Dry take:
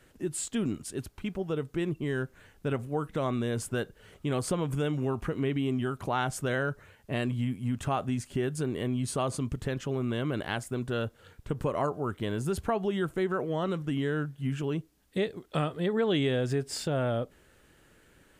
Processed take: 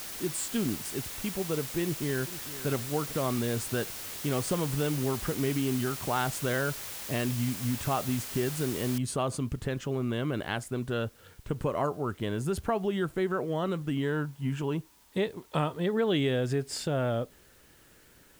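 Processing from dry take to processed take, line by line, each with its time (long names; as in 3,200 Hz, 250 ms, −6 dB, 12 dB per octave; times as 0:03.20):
0:01.82–0:02.67: delay throw 450 ms, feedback 30%, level −14.5 dB
0:08.98: noise floor change −40 dB −62 dB
0:14.03–0:15.83: parametric band 940 Hz +11 dB 0.25 octaves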